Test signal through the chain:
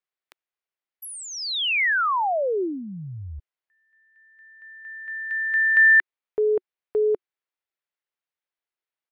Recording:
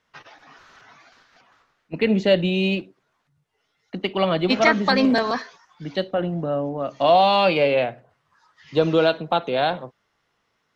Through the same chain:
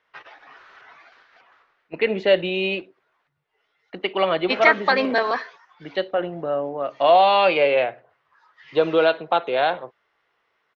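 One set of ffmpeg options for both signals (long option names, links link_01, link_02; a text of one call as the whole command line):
ffmpeg -i in.wav -af "firequalizer=gain_entry='entry(230,0);entry(370,11);entry(2000,14);entry(6700,-2)':delay=0.05:min_phase=1,volume=-10.5dB" out.wav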